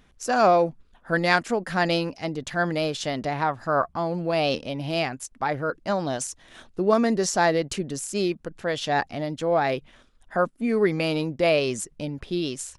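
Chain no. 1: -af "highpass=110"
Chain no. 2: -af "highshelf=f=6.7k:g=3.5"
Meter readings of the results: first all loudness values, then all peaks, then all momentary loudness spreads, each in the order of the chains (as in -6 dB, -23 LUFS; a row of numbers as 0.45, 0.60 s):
-25.0, -25.0 LUFS; -5.5, -6.0 dBFS; 9, 9 LU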